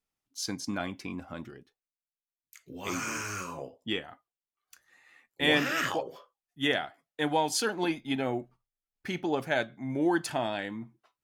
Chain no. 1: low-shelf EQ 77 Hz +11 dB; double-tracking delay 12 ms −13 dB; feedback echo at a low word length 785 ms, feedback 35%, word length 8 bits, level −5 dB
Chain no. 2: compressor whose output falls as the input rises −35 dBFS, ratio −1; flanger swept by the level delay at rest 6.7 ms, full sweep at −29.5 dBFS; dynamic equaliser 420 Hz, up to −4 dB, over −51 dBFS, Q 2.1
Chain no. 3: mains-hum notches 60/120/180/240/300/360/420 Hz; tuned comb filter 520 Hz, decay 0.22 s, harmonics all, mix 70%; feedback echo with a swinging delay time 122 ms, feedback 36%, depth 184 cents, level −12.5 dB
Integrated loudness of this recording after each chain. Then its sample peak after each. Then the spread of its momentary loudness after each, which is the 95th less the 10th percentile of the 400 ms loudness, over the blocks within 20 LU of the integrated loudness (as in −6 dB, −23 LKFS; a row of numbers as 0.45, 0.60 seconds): −30.5, −39.0, −40.5 LKFS; −12.5, −21.0, −22.0 dBFS; 17, 20, 16 LU